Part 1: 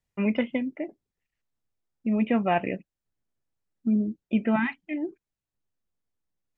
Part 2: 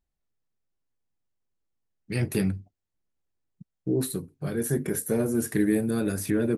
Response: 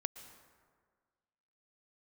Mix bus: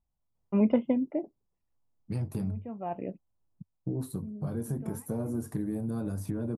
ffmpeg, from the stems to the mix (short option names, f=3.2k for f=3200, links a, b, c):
-filter_complex "[0:a]adelay=350,volume=1.5dB[a];[1:a]equalizer=f=100:t=o:w=0.67:g=5,equalizer=f=400:t=o:w=0.67:g=-8,equalizer=f=1k:t=o:w=0.67:g=3,acompressor=threshold=-30dB:ratio=5,volume=0.5dB,asplit=2[b][c];[c]apad=whole_len=305260[d];[a][d]sidechaincompress=threshold=-55dB:ratio=5:attack=8.5:release=463[e];[e][b]amix=inputs=2:normalize=0,firequalizer=gain_entry='entry(980,0);entry(1800,-17);entry(4900,-11)':delay=0.05:min_phase=1"